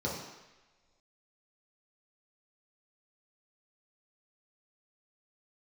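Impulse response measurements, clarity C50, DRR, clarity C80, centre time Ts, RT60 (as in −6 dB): 2.5 dB, −5.5 dB, 5.5 dB, 55 ms, non-exponential decay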